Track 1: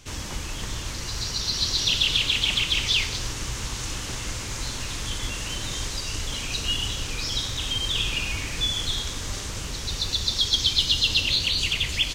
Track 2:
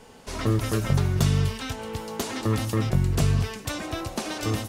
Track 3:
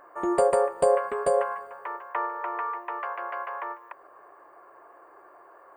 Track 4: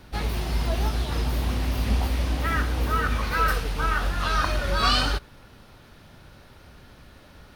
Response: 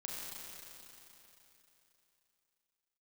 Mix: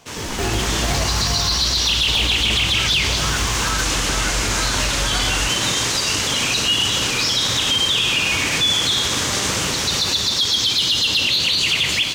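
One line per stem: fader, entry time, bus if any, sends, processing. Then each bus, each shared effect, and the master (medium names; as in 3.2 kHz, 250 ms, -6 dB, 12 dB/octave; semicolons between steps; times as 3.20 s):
-1.0 dB, 0.00 s, send -11 dB, high-pass 140 Hz 12 dB/octave; level rider gain up to 9.5 dB; peaking EQ 1.3 kHz +2.5 dB 2.5 oct
-8.0 dB, 0.00 s, no send, none
+0.5 dB, 0.00 s, no send, steep high-pass 720 Hz 72 dB/octave; decimation with a swept rate 23×, swing 160% 0.47 Hz
-5.0 dB, 0.30 s, no send, comb 1.3 ms, depth 68%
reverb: on, RT60 3.4 s, pre-delay 30 ms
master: waveshaping leveller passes 1; peak limiter -10.5 dBFS, peak gain reduction 9 dB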